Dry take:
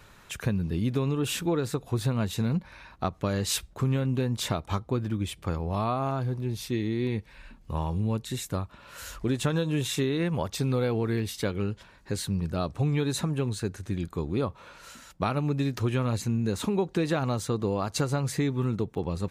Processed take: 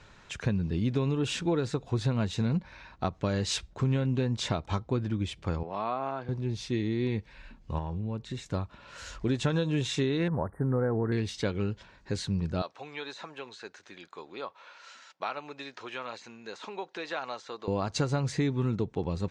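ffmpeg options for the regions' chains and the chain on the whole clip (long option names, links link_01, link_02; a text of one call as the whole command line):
ffmpeg -i in.wav -filter_complex "[0:a]asettb=1/sr,asplit=3[link_01][link_02][link_03];[link_01]atrim=end=5.634[link_04];[link_02]atrim=start=5.63:end=6.29,asetpts=PTS-STARTPTS,afade=type=in:duration=0.004:curve=qsin,afade=type=out:start_time=0.656:duration=0.004:curve=qsin,highpass=150,lowpass=2000,aemphasis=mode=production:type=riaa[link_05];[link_03]atrim=start=6.286[link_06];[link_04][link_05]acrossfade=duration=0.004:curve1=hsin:curve2=qsin[link_07];[link_07][link_06]acrossfade=duration=0.004:curve1=qsin:curve2=hsin,asettb=1/sr,asplit=3[link_08][link_09][link_10];[link_08]atrim=end=7.784[link_11];[link_09]atrim=start=7.78:end=8.46,asetpts=PTS-STARTPTS,afade=type=in:duration=0.004:curve=qsin,afade=type=out:start_time=0.676:duration=0.004:curve=qsin,highshelf=frequency=3500:gain=-9.5,acompressor=threshold=-29dB:ratio=4:attack=3.2:release=140:knee=1:detection=peak[link_12];[link_10]atrim=start=8.456[link_13];[link_11][link_12]acrossfade=duration=0.004:curve1=hsin:curve2=qsin[link_14];[link_14][link_13]acrossfade=duration=0.004:curve1=qsin:curve2=hsin,asettb=1/sr,asplit=3[link_15][link_16][link_17];[link_15]atrim=end=10.284[link_18];[link_16]atrim=start=10.28:end=11.12,asetpts=PTS-STARTPTS,afade=type=in:duration=0.004:curve=qsin,afade=type=out:start_time=0.836:duration=0.004:curve=qsin,aemphasis=mode=production:type=cd,deesser=0.85,asuperstop=centerf=4400:order=20:qfactor=0.59[link_19];[link_17]atrim=start=11.116[link_20];[link_18][link_19]acrossfade=duration=0.004:curve1=hsin:curve2=qsin[link_21];[link_21][link_20]acrossfade=duration=0.004:curve1=qsin:curve2=hsin,asettb=1/sr,asplit=3[link_22][link_23][link_24];[link_22]atrim=end=12.624[link_25];[link_23]atrim=start=12.62:end=17.68,asetpts=PTS-STARTPTS,afade=type=in:duration=0.004:curve=qsin,afade=type=out:start_time=5.056:duration=0.004:curve=qsin,deesser=0.95,highpass=740,lowpass=6100[link_26];[link_24]atrim=start=17.676[link_27];[link_25][link_26]acrossfade=duration=0.004:curve1=hsin:curve2=qsin[link_28];[link_28][link_27]acrossfade=duration=0.004:curve1=qsin:curve2=hsin,lowpass=frequency=6900:width=0.5412,lowpass=frequency=6900:width=1.3066,bandreject=frequency=1200:width=16,volume=-1dB" out.wav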